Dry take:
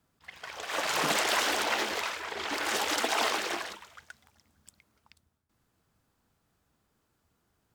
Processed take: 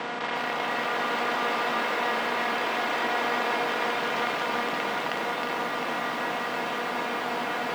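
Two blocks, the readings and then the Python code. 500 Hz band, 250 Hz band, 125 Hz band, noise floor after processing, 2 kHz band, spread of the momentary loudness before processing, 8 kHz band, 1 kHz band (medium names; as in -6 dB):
+7.5 dB, +8.0 dB, +6.5 dB, -31 dBFS, +5.5 dB, 14 LU, -8.5 dB, +8.0 dB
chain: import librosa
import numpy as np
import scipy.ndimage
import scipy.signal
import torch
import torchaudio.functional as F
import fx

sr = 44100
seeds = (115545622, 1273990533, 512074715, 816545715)

p1 = fx.bin_compress(x, sr, power=0.2)
p2 = p1 + 10.0 ** (-4.0 / 20.0) * np.pad(p1, (int(316 * sr / 1000.0), 0))[:len(p1)]
p3 = fx.over_compress(p2, sr, threshold_db=-28.0, ratio=-1.0)
p4 = p2 + F.gain(torch.from_numpy(p3), 2.0).numpy()
p5 = fx.bandpass_edges(p4, sr, low_hz=180.0, high_hz=2500.0)
p6 = fx.comb_fb(p5, sr, f0_hz=240.0, decay_s=0.19, harmonics='all', damping=0.0, mix_pct=80)
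y = fx.echo_crushed(p6, sr, ms=356, feedback_pct=80, bits=8, wet_db=-6.0)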